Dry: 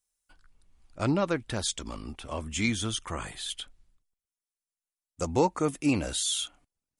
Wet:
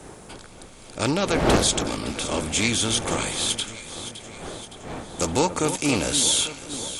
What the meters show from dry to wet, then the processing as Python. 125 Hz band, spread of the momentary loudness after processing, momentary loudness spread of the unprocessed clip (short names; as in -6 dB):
+5.0 dB, 18 LU, 11 LU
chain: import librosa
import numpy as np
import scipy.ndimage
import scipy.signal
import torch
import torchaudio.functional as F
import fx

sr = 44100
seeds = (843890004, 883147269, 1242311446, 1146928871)

y = fx.bin_compress(x, sr, power=0.6)
y = fx.dmg_wind(y, sr, seeds[0], corner_hz=610.0, level_db=-33.0)
y = fx.high_shelf(y, sr, hz=2900.0, db=9.5)
y = fx.notch(y, sr, hz=1000.0, q=24.0)
y = fx.echo_alternate(y, sr, ms=282, hz=1800.0, feedback_pct=75, wet_db=-10)
y = fx.doppler_dist(y, sr, depth_ms=0.22)